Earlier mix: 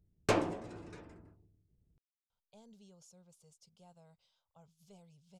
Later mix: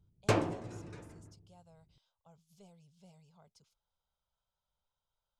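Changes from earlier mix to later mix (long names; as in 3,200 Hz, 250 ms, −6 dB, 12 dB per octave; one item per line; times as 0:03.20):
speech: entry −2.30 s
background: add parametric band 120 Hz +9 dB 0.62 octaves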